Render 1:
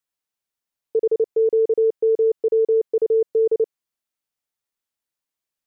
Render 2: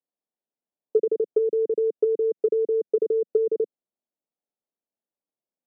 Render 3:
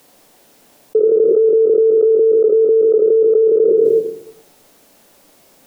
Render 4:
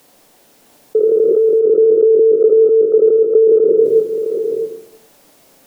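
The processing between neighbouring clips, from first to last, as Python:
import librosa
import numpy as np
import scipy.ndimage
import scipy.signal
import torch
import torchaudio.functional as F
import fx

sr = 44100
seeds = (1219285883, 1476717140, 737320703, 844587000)

y1 = scipy.signal.sosfilt(scipy.signal.cheby1(2, 1.0, [200.0, 670.0], 'bandpass', fs=sr, output='sos'), x)
y1 = fx.env_lowpass_down(y1, sr, base_hz=310.0, full_db=-17.0)
y1 = F.gain(torch.from_numpy(y1), 2.5).numpy()
y2 = fx.room_shoebox(y1, sr, seeds[0], volume_m3=110.0, walls='mixed', distance_m=0.33)
y2 = fx.env_flatten(y2, sr, amount_pct=100)
y2 = F.gain(torch.from_numpy(y2), 3.5).numpy()
y3 = y2 + 10.0 ** (-6.5 / 20.0) * np.pad(y2, (int(661 * sr / 1000.0), 0))[:len(y2)]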